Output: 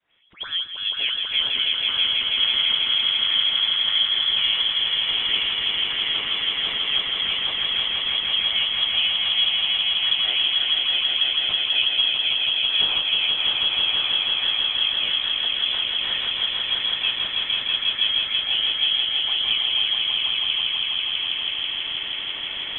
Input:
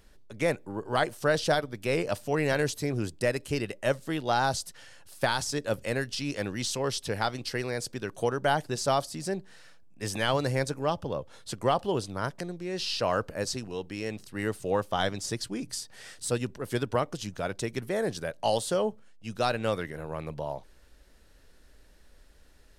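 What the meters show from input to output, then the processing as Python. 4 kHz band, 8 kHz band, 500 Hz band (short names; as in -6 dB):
+22.5 dB, under -40 dB, -16.0 dB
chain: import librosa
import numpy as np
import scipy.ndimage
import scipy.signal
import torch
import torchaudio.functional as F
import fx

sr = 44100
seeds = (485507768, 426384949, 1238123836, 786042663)

p1 = fx.recorder_agc(x, sr, target_db=-18.5, rise_db_per_s=42.0, max_gain_db=30)
p2 = scipy.signal.sosfilt(scipy.signal.butter(4, 300.0, 'highpass', fs=sr, output='sos'), p1)
p3 = fx.high_shelf(p2, sr, hz=2500.0, db=-9.5)
p4 = fx.notch(p3, sr, hz=1700.0, q=26.0)
p5 = fx.small_body(p4, sr, hz=(400.0, 1100.0), ring_ms=45, db=8)
p6 = fx.dispersion(p5, sr, late='lows', ms=113.0, hz=1800.0)
p7 = p6 + fx.echo_swell(p6, sr, ms=163, loudest=5, wet_db=-4.0, dry=0)
p8 = np.repeat(p7[::6], 6)[:len(p7)]
y = fx.freq_invert(p8, sr, carrier_hz=3700)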